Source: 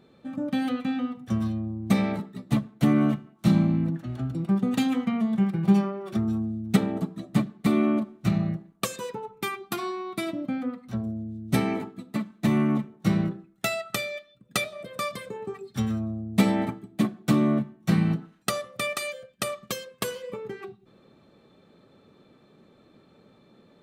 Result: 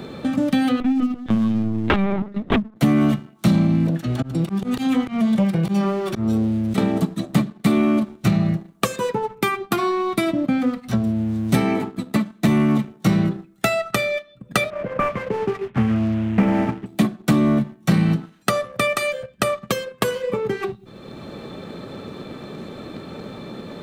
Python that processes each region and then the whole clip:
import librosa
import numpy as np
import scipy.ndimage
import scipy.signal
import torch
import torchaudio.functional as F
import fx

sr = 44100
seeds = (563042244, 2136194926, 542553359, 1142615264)

y = fx.chain(x, sr, fx.lowpass(hz=1700.0, slope=6),
    fx.overflow_wrap(gain_db=15.0),
    fx.lpc_vocoder(seeds[0], excitation='pitch_kept', order=16), at=(0.8, 2.76))
y = fx.chain(y, sr, fx.auto_swell(attack_ms=213.0),
    fx.transformer_sat(knee_hz=410.0), at=(3.87, 6.78))
y = fx.chain(y, sr, fx.cvsd(bps=16000),
    fx.lowpass(hz=1800.0, slope=12), at=(14.7, 16.86))
y = fx.leveller(y, sr, passes=1)
y = fx.band_squash(y, sr, depth_pct=70)
y = y * librosa.db_to_amplitude(4.5)